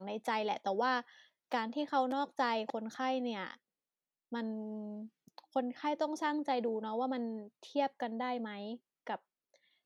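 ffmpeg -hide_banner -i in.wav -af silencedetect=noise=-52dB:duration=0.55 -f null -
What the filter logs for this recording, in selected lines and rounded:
silence_start: 3.55
silence_end: 4.32 | silence_duration: 0.77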